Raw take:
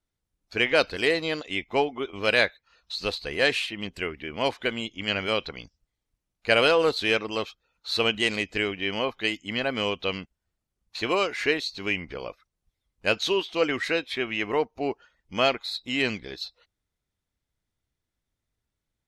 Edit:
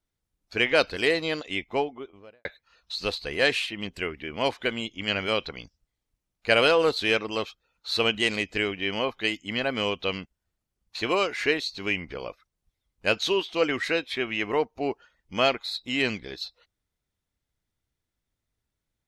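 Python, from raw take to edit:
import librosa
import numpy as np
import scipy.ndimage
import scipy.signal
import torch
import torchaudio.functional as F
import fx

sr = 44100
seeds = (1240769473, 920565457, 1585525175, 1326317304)

y = fx.studio_fade_out(x, sr, start_s=1.49, length_s=0.96)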